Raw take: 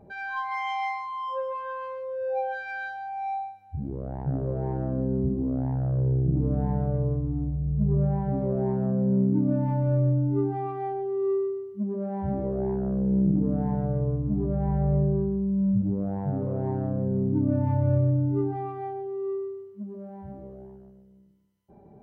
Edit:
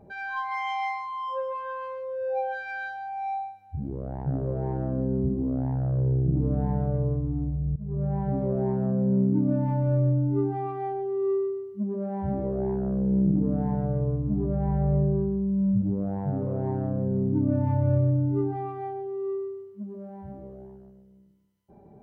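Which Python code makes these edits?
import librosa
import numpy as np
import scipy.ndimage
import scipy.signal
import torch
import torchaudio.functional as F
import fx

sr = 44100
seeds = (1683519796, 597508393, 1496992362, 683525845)

y = fx.edit(x, sr, fx.fade_in_from(start_s=7.76, length_s=0.47, floor_db=-19.5), tone=tone)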